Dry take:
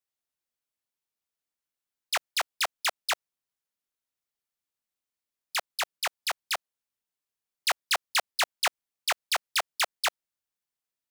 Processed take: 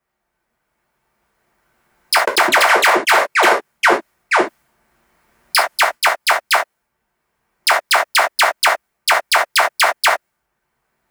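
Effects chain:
camcorder AGC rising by 7.7 dB per second
0:02.17–0:05.95: delay with pitch and tempo change per echo 103 ms, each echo −4 semitones, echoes 3
high shelf with overshoot 2,500 Hz −7.5 dB, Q 1.5
reverb whose tail is shaped and stops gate 90 ms falling, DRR −1 dB
boost into a limiter +21 dB
one half of a high-frequency compander decoder only
level −1.5 dB

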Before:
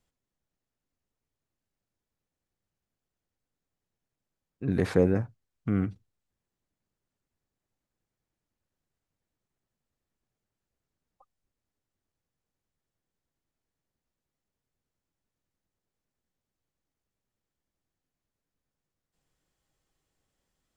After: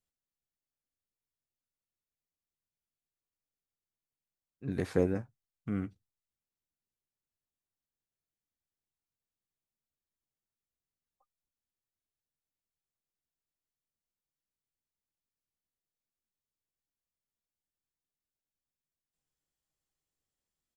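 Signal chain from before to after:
high-shelf EQ 3,900 Hz +8 dB
double-tracking delay 14 ms −12 dB
expander for the loud parts 1.5 to 1, over −39 dBFS
level −4.5 dB

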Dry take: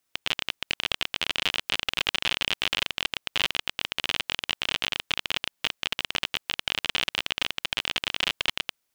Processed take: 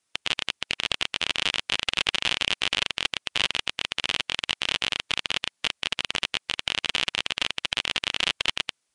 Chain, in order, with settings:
high-shelf EQ 7,100 Hz +5 dB
level +1 dB
Ogg Vorbis 64 kbit/s 22,050 Hz

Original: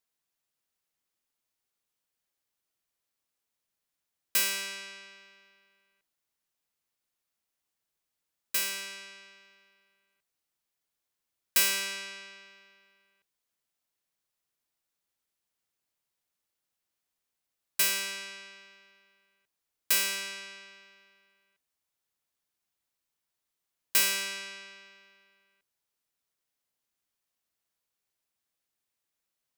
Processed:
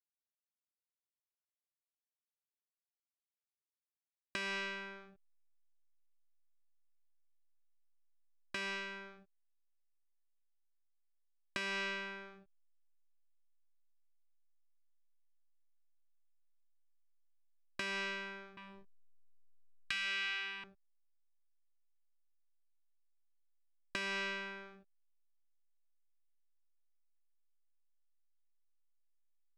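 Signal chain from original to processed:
0:18.57–0:20.64: drawn EQ curve 130 Hz 0 dB, 750 Hz −29 dB, 1,200 Hz +3 dB, 3,100 Hz +9 dB, 5,700 Hz +4 dB
downward compressor 6 to 1, threshold −29 dBFS, peak gain reduction 12 dB
slack as between gear wheels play −40.5 dBFS
head-to-tape spacing loss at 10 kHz 34 dB
level +6 dB

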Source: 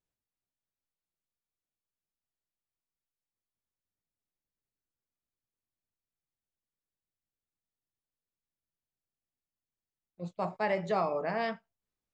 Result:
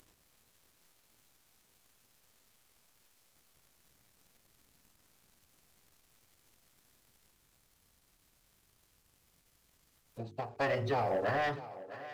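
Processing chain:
downward compressor 6 to 1, threshold −32 dBFS, peak gain reduction 7.5 dB
phase-vocoder pitch shift with formants kept −7.5 semitones
upward compression, threshold −45 dBFS
leveller curve on the samples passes 2
mains-hum notches 50/100/150/200/250/300/350/400/450 Hz
on a send: feedback echo with a high-pass in the loop 655 ms, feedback 52%, high-pass 180 Hz, level −14.5 dB
on the sum: every ending faded ahead of time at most 140 dB per second

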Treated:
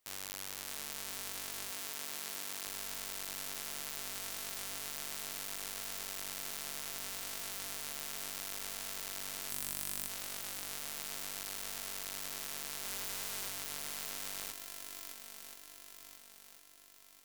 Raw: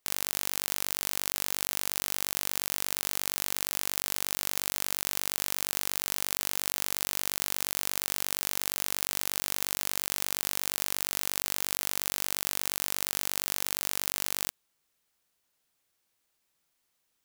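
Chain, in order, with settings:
0:09.50–0:10.07: time-frequency box erased 300–7,700 Hz
0:12.81–0:13.49: double-tracking delay 30 ms −4 dB
feedback echo with a long and a short gap by turns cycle 1,038 ms, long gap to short 1.5 to 1, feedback 46%, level −16 dB
flanger 0.34 Hz, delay 8.5 ms, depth 8.4 ms, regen −53%
hard clipping −22 dBFS, distortion −2 dB
0:01.71–0:02.67: Bessel high-pass filter 160 Hz, order 2
level +3 dB

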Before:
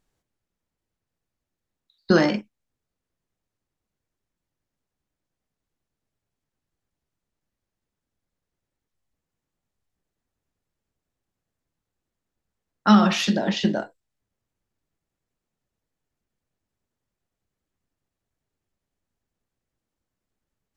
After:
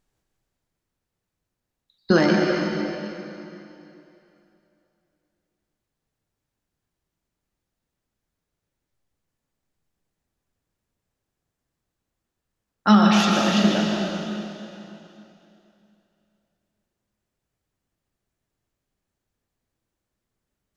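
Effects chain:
dense smooth reverb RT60 2.9 s, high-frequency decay 0.95×, pre-delay 105 ms, DRR 0 dB

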